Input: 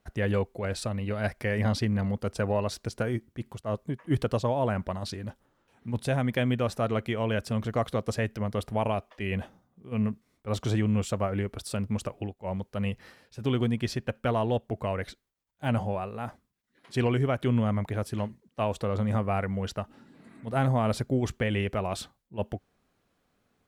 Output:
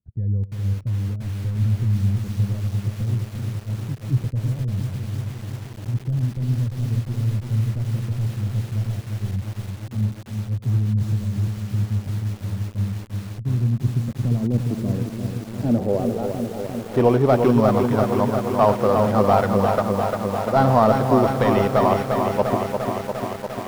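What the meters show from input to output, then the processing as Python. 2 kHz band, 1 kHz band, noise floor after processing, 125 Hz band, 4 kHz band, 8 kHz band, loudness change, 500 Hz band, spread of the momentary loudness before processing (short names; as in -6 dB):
+1.5 dB, +10.5 dB, -36 dBFS, +9.0 dB, +0.5 dB, n/a, +7.5 dB, +8.5 dB, 10 LU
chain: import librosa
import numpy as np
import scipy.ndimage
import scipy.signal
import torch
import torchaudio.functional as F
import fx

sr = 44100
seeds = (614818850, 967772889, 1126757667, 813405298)

y = np.r_[np.sort(x[:len(x) // 8 * 8].reshape(-1, 8), axis=1).ravel(), x[len(x) // 8 * 8:]]
y = fx.weighting(y, sr, curve='D')
y = fx.leveller(y, sr, passes=2)
y = fx.filter_sweep_lowpass(y, sr, from_hz=110.0, to_hz=1000.0, start_s=13.45, end_s=17.45, q=2.1)
y = fx.echo_feedback(y, sr, ms=91, feedback_pct=23, wet_db=-19)
y = fx.echo_crushed(y, sr, ms=349, feedback_pct=80, bits=7, wet_db=-5)
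y = F.gain(torch.from_numpy(y), 2.5).numpy()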